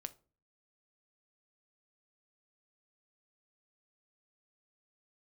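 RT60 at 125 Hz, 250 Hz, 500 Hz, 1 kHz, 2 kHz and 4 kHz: 0.60, 0.55, 0.45, 0.35, 0.25, 0.25 s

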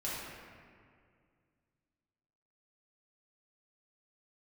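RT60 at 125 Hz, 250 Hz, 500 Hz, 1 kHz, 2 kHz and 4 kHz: 2.8, 2.6, 2.2, 2.0, 1.9, 1.3 s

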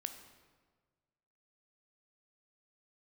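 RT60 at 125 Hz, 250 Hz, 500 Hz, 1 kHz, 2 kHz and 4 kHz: 1.8, 1.5, 1.6, 1.4, 1.2, 1.0 s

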